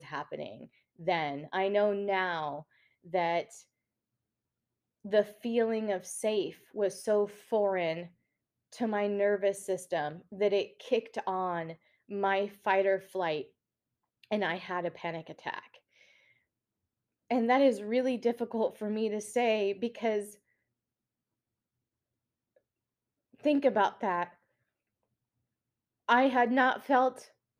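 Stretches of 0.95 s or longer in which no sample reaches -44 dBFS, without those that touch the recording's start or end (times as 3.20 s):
3.59–5.05 s
15.76–17.31 s
20.33–23.44 s
24.27–26.09 s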